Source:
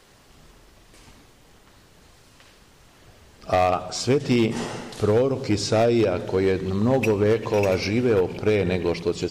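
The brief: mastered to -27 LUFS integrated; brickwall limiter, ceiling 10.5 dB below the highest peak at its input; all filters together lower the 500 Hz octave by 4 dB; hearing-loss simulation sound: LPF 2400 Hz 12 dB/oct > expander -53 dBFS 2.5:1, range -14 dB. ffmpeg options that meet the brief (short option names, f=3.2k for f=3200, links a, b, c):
-af "equalizer=f=500:t=o:g=-5,alimiter=limit=-23.5dB:level=0:latency=1,lowpass=2.4k,agate=range=-14dB:threshold=-53dB:ratio=2.5,volume=5.5dB"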